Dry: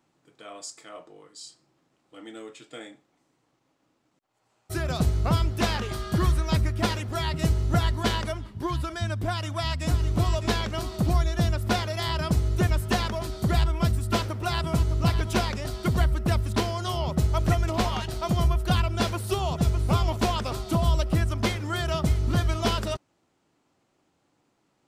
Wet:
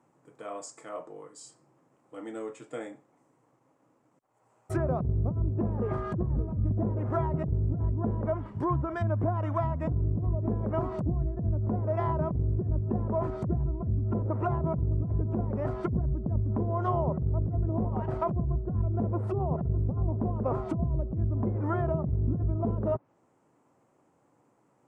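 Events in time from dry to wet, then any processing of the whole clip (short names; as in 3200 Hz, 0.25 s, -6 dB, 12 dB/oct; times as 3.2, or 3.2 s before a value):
5.63–6.14 echo throw 0.57 s, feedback 25%, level -4 dB
whole clip: treble ducked by the level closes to 310 Hz, closed at -21.5 dBFS; graphic EQ 125/250/500/1000/2000/4000/8000 Hz +10/+6/+10/+10/+4/-10/+8 dB; negative-ratio compressor -18 dBFS, ratio -1; gain -8.5 dB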